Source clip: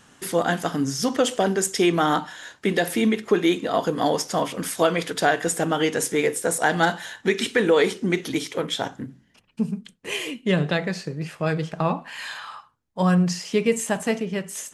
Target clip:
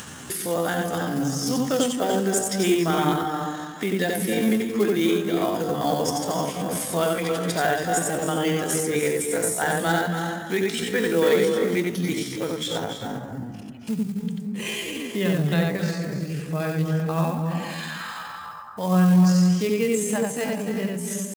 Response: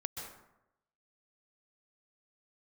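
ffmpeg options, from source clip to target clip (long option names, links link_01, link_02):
-filter_complex "[0:a]acrusher=bits=5:mode=log:mix=0:aa=0.000001,highshelf=frequency=6600:gain=7,asplit=2[link_01][link_02];[1:a]atrim=start_sample=2205,lowshelf=frequency=290:gain=10,adelay=60[link_03];[link_02][link_03]afir=irnorm=-1:irlink=0,volume=-1.5dB[link_04];[link_01][link_04]amix=inputs=2:normalize=0,acompressor=mode=upward:threshold=-19dB:ratio=2.5,highpass=63,atempo=0.69,volume=-5.5dB"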